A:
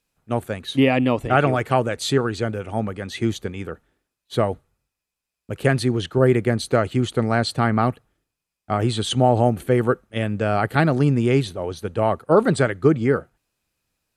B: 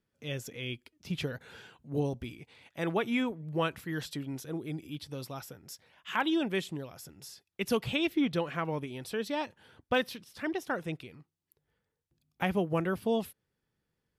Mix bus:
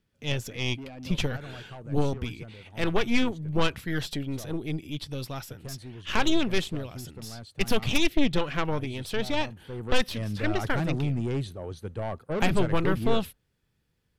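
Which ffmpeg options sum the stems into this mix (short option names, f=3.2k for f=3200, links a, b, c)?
-filter_complex "[0:a]asoftclip=type=tanh:threshold=-16dB,volume=-11dB,afade=t=in:st=9.59:d=0.64:silence=0.251189[a];[1:a]equalizer=f=3.2k:t=o:w=1.6:g=5.5,aeval=exprs='0.237*(cos(1*acos(clip(val(0)/0.237,-1,1)))-cos(1*PI/2))+0.0841*(cos(4*acos(clip(val(0)/0.237,-1,1)))-cos(4*PI/2))':c=same,volume=2dB[b];[a][b]amix=inputs=2:normalize=0,lowshelf=f=170:g=10,asoftclip=type=tanh:threshold=-10dB"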